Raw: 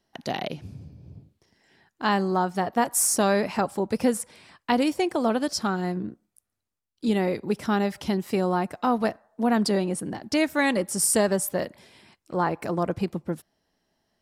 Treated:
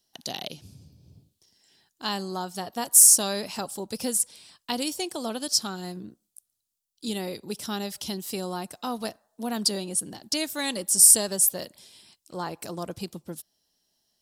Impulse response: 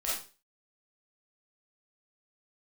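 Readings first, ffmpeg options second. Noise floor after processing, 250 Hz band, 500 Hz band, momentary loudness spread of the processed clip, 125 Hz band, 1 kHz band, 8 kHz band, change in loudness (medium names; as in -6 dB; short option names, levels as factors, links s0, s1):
-79 dBFS, -8.5 dB, -8.5 dB, 23 LU, -8.5 dB, -8.5 dB, +9.0 dB, +2.5 dB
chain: -af "aexciter=amount=6.3:drive=3.3:freq=3000,volume=0.376"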